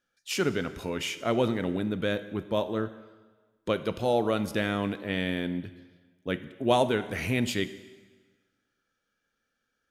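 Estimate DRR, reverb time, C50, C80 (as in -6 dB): 12.0 dB, 1.4 s, 14.0 dB, 15.5 dB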